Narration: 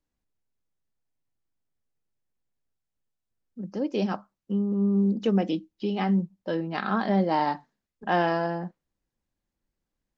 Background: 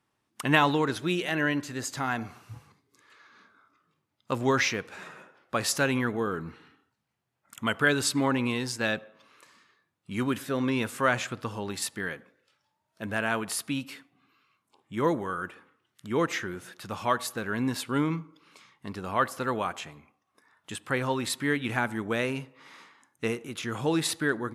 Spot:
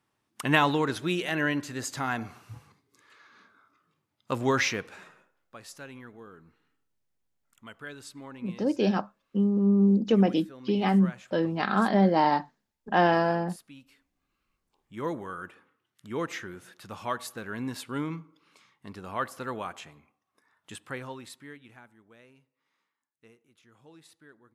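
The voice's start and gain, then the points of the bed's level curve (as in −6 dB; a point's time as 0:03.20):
4.85 s, +2.0 dB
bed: 0:04.87 −0.5 dB
0:05.35 −18.5 dB
0:13.98 −18.5 dB
0:15.17 −5.5 dB
0:20.77 −5.5 dB
0:21.97 −27.5 dB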